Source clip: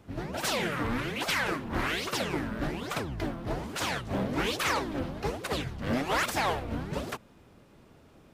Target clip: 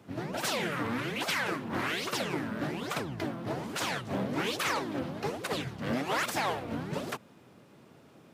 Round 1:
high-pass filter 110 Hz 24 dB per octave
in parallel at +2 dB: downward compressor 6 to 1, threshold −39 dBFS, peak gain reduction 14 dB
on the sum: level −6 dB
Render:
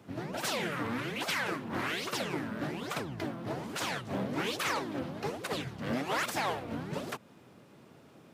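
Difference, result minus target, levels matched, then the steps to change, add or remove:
downward compressor: peak gain reduction +5.5 dB
change: downward compressor 6 to 1, threshold −32.5 dBFS, peak gain reduction 8.5 dB

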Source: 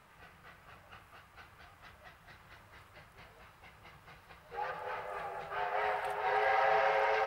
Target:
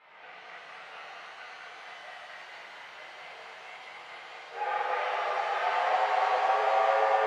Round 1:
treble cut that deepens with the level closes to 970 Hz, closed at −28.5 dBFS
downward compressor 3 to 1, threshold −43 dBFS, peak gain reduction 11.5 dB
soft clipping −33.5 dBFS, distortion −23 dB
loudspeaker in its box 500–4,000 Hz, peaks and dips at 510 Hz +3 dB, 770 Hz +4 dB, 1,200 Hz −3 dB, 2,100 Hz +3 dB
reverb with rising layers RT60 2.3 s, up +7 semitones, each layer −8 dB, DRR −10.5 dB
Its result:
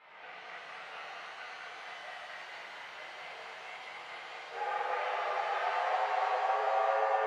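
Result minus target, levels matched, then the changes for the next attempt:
downward compressor: peak gain reduction +7 dB
change: downward compressor 3 to 1, threshold −32.5 dBFS, peak gain reduction 4.5 dB

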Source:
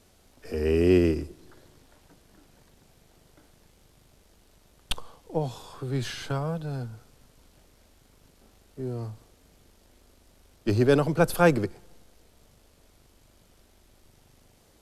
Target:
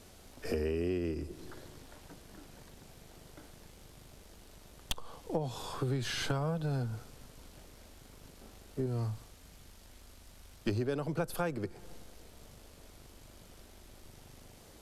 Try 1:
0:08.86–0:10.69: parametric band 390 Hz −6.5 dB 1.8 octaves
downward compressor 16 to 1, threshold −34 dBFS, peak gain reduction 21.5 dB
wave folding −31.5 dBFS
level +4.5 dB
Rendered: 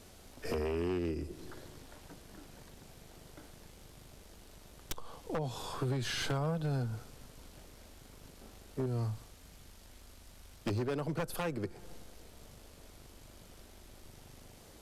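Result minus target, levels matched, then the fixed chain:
wave folding: distortion +12 dB
0:08.86–0:10.69: parametric band 390 Hz −6.5 dB 1.8 octaves
downward compressor 16 to 1, threshold −34 dBFS, peak gain reduction 21.5 dB
wave folding −24 dBFS
level +4.5 dB

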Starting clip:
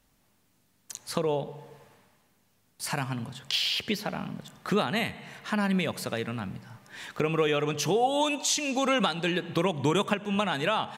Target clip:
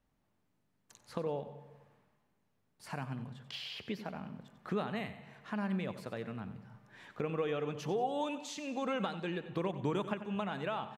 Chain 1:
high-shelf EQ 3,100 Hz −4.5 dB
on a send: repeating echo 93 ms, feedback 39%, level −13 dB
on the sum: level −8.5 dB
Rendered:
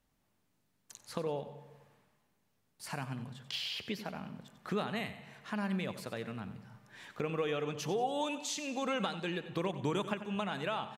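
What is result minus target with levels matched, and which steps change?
8,000 Hz band +7.0 dB
change: high-shelf EQ 3,100 Hz −14.5 dB

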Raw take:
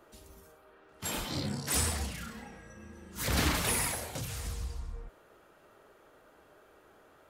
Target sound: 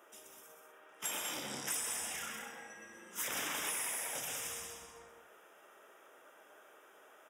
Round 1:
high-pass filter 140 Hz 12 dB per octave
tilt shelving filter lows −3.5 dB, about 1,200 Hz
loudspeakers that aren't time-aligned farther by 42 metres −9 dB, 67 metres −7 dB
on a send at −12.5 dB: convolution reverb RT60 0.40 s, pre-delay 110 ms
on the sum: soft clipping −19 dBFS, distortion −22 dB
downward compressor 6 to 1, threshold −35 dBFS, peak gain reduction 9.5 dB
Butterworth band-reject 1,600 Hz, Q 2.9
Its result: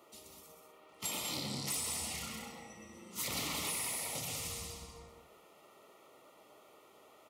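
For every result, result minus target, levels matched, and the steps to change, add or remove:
soft clipping: distortion +21 dB; 125 Hz band +11.5 dB; 2,000 Hz band −3.5 dB
change: soft clipping −7.5 dBFS, distortion −42 dB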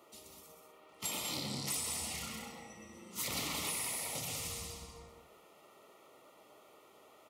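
125 Hz band +11.5 dB; 2,000 Hz band −3.5 dB
change: high-pass filter 350 Hz 12 dB per octave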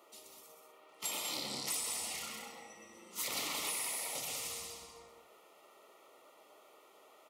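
2,000 Hz band −3.5 dB
change: Butterworth band-reject 4,300 Hz, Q 2.9

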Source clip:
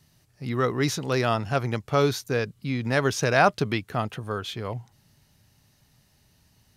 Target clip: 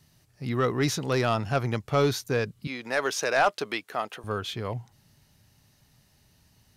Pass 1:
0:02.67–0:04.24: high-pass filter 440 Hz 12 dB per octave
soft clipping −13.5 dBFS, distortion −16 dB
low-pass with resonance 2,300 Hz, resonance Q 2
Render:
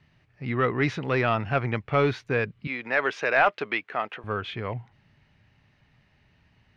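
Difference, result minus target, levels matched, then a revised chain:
2,000 Hz band +3.0 dB
0:02.67–0:04.24: high-pass filter 440 Hz 12 dB per octave
soft clipping −13.5 dBFS, distortion −16 dB

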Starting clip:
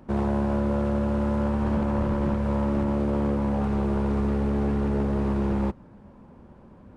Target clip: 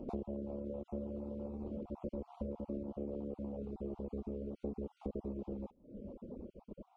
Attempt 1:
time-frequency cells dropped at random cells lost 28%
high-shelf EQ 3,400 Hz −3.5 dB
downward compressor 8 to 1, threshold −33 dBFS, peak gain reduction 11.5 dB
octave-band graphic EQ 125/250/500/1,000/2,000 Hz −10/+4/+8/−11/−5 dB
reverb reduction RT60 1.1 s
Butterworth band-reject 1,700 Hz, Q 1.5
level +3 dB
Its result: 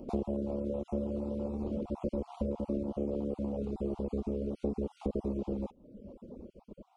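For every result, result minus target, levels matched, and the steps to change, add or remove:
downward compressor: peak gain reduction −7.5 dB; 4,000 Hz band +5.0 dB
change: downward compressor 8 to 1, threshold −41.5 dBFS, peak gain reduction 19 dB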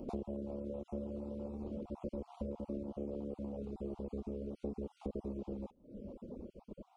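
4,000 Hz band +5.5 dB
change: high-shelf EQ 3,400 Hz −15 dB

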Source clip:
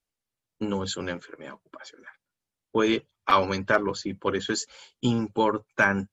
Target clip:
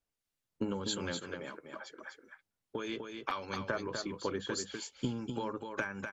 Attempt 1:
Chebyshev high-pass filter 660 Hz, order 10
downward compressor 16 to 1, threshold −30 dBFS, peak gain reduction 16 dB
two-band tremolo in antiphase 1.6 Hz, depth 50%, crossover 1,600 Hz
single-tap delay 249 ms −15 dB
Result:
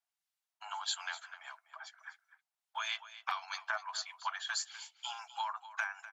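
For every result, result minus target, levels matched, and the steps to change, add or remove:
500 Hz band −16.5 dB; echo-to-direct −9 dB
remove: Chebyshev high-pass filter 660 Hz, order 10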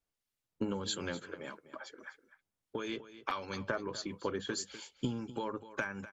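echo-to-direct −9 dB
change: single-tap delay 249 ms −6 dB

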